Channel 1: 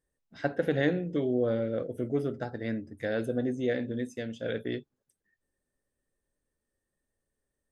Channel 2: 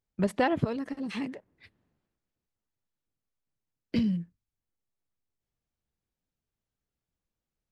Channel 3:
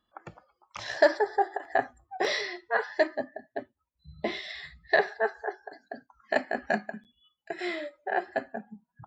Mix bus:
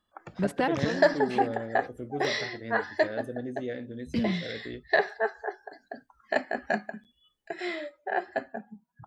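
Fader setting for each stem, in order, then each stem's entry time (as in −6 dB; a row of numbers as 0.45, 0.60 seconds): −6.0, −1.0, −0.5 decibels; 0.00, 0.20, 0.00 seconds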